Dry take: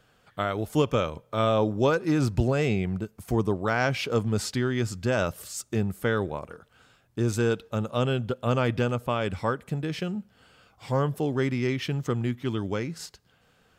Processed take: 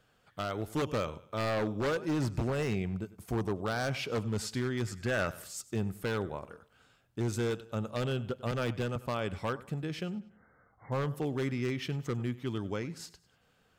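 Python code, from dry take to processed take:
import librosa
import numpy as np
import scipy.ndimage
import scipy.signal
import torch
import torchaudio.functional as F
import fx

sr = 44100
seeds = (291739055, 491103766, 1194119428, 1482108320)

y = fx.brickwall_lowpass(x, sr, high_hz=2200.0, at=(10.15, 10.92))
y = fx.echo_feedback(y, sr, ms=97, feedback_pct=39, wet_db=-19.0)
y = 10.0 ** (-18.5 / 20.0) * (np.abs((y / 10.0 ** (-18.5 / 20.0) + 3.0) % 4.0 - 2.0) - 1.0)
y = fx.peak_eq(y, sr, hz=1700.0, db=7.5, octaves=0.77, at=(4.87, 5.47))
y = fx.band_widen(y, sr, depth_pct=70, at=(8.51, 8.96))
y = y * 10.0 ** (-6.0 / 20.0)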